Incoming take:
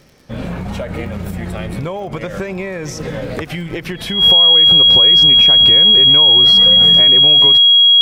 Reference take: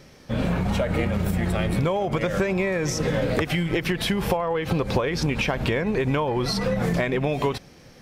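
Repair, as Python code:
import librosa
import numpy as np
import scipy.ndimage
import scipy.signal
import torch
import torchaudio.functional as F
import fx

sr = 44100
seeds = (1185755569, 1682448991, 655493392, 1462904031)

y = fx.fix_declick_ar(x, sr, threshold=6.5)
y = fx.notch(y, sr, hz=3300.0, q=30.0)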